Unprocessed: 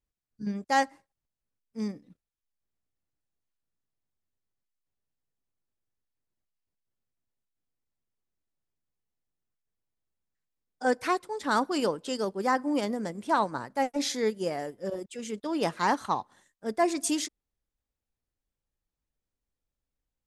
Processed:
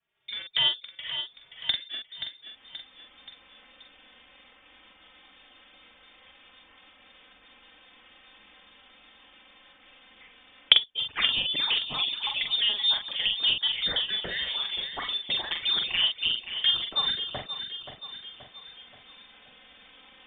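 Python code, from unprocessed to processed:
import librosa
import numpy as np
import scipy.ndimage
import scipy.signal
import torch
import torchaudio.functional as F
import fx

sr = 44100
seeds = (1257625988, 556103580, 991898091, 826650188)

y = fx.block_reorder(x, sr, ms=141.0, group=2)
y = fx.recorder_agc(y, sr, target_db=-19.5, rise_db_per_s=38.0, max_gain_db=30)
y = scipy.signal.sosfilt(scipy.signal.cheby1(6, 1.0, 290.0, 'highpass', fs=sr, output='sos'), y)
y = fx.peak_eq(y, sr, hz=390.0, db=-6.0, octaves=0.78)
y = fx.notch(y, sr, hz=460.0, q=13.0)
y = fx.env_flanger(y, sr, rest_ms=4.0, full_db=-25.5)
y = fx.doubler(y, sr, ms=44.0, db=-5)
y = fx.echo_feedback(y, sr, ms=528, feedback_pct=38, wet_db=-13)
y = fx.freq_invert(y, sr, carrier_hz=3900)
y = fx.band_squash(y, sr, depth_pct=40)
y = y * 10.0 ** (5.5 / 20.0)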